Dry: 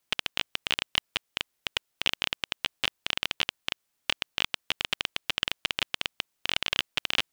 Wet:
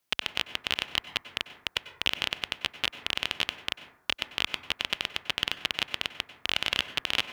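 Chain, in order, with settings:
high-pass filter 42 Hz
parametric band 7,900 Hz −2.5 dB 0.58 octaves
dense smooth reverb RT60 0.78 s, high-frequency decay 0.3×, pre-delay 85 ms, DRR 11.5 dB

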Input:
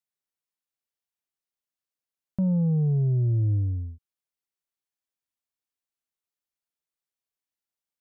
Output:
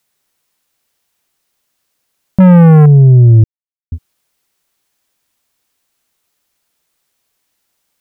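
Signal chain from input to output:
0:02.40–0:02.86: leveller curve on the samples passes 2
0:03.44–0:03.92: silence
boost into a limiter +25.5 dB
level −1 dB

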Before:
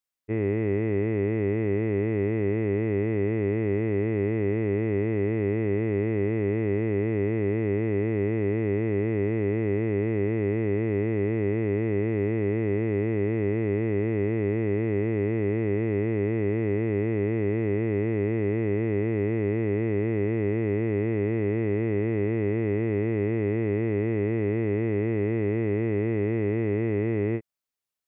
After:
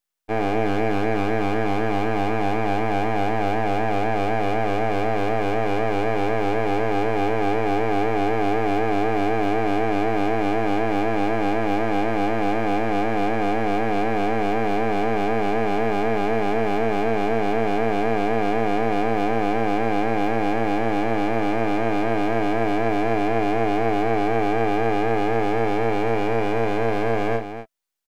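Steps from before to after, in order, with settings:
high-pass filter 40 Hz 12 dB per octave
parametric band 330 Hz +4 dB 0.22 octaves
full-wave rectification
low-shelf EQ 150 Hz −10.5 dB
loudspeakers that aren't time-aligned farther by 18 metres −11 dB, 85 metres −10 dB
level +7.5 dB

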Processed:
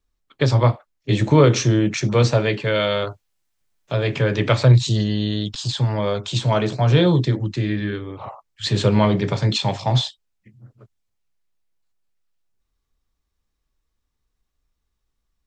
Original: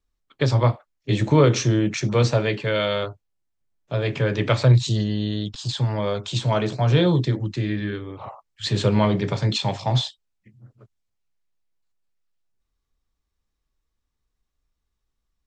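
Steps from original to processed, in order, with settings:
0:03.07–0:05.69: one half of a high-frequency compander encoder only
level +2.5 dB

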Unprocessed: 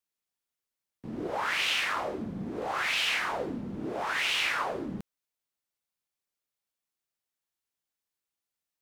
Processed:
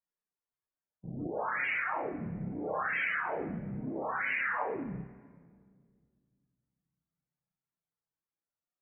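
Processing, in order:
low-pass that shuts in the quiet parts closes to 2,700 Hz, open at −29 dBFS
flutter between parallel walls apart 5.2 metres, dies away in 0.29 s
formants moved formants −5 semitones
spectral peaks only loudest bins 32
rectangular room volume 3,100 cubic metres, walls mixed, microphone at 0.48 metres
level −3.5 dB

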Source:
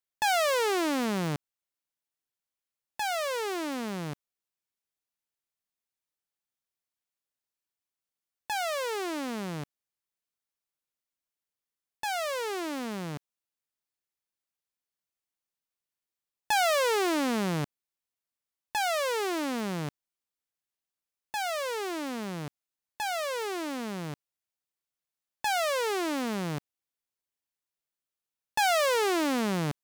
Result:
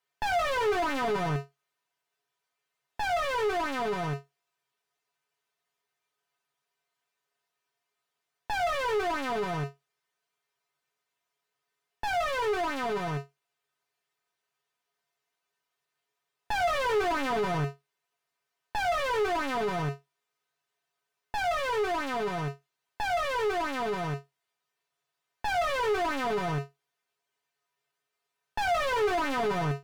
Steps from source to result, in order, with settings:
tuned comb filter 140 Hz, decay 0.17 s, harmonics odd, mix 90%
mid-hump overdrive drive 30 dB, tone 1,300 Hz, clips at −24.5 dBFS
level +5 dB

